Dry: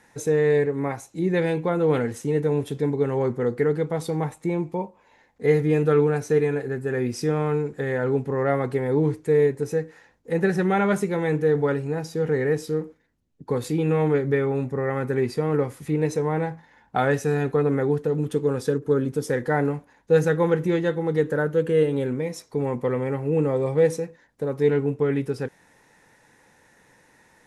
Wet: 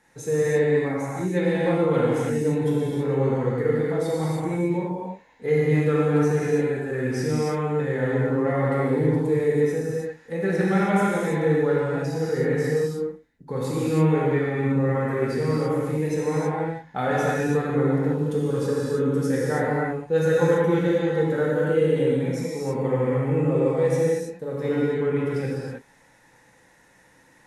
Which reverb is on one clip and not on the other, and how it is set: non-linear reverb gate 0.35 s flat, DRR -6.5 dB; gain -6.5 dB

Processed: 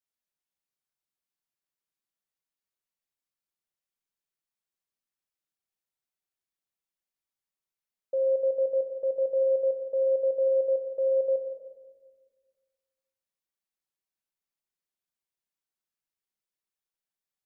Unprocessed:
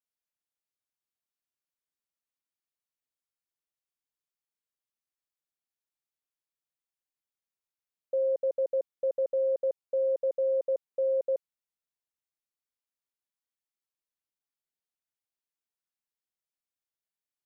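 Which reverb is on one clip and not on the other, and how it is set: shoebox room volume 1400 m³, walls mixed, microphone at 1.1 m; gain -1.5 dB

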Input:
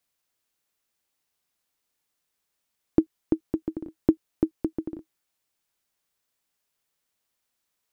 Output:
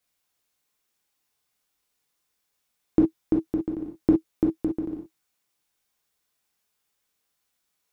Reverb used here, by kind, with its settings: non-linear reverb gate 80 ms flat, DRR -1 dB; gain -1 dB

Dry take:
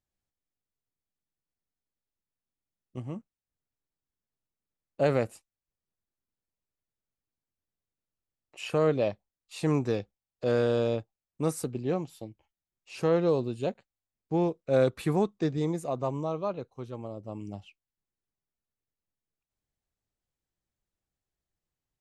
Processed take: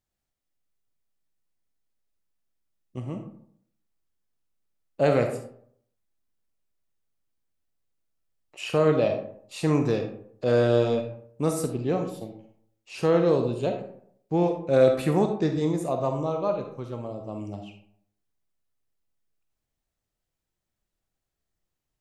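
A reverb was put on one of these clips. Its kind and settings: digital reverb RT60 0.65 s, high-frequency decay 0.5×, pre-delay 5 ms, DRR 4.5 dB; gain +3 dB

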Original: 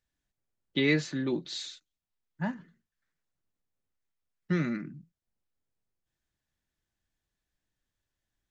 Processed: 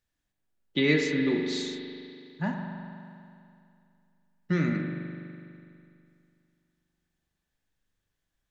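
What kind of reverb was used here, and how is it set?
spring tank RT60 2.5 s, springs 41 ms, chirp 35 ms, DRR 2.5 dB; gain +1.5 dB

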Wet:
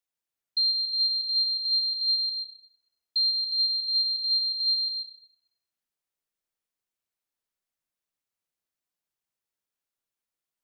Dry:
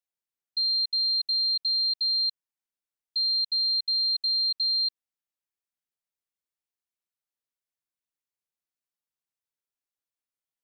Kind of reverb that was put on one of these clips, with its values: digital reverb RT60 3.4 s, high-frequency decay 0.25×, pre-delay 0.11 s, DRR 4.5 dB; gain +2 dB

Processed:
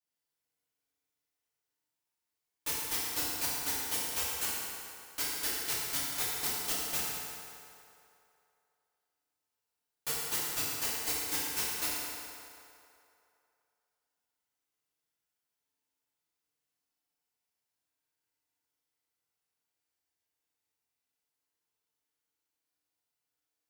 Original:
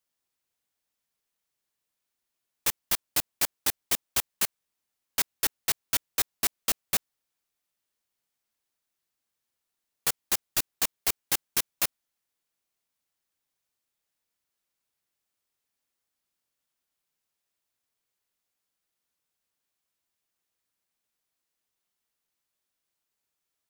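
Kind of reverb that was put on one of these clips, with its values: FDN reverb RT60 2.7 s, low-frequency decay 0.7×, high-frequency decay 0.7×, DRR -9.5 dB; gain -13 dB

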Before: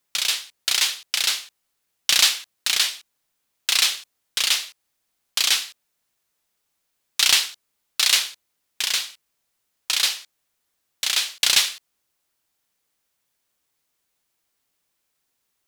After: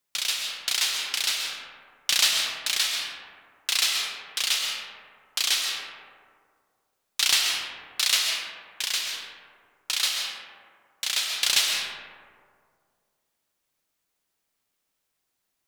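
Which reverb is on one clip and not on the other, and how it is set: digital reverb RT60 2.1 s, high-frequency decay 0.35×, pre-delay 90 ms, DRR 0.5 dB; gain -5 dB

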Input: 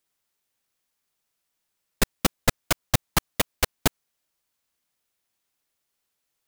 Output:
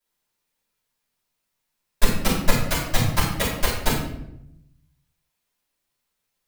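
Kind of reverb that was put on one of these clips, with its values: shoebox room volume 190 m³, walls mixed, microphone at 5.5 m; gain -12.5 dB

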